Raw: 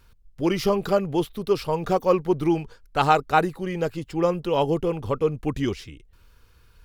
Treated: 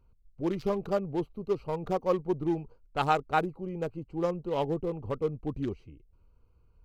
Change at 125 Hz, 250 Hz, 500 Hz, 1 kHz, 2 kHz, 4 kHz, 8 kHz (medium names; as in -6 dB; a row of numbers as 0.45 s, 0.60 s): -7.0 dB, -7.5 dB, -7.5 dB, -7.5 dB, -8.5 dB, -11.0 dB, under -10 dB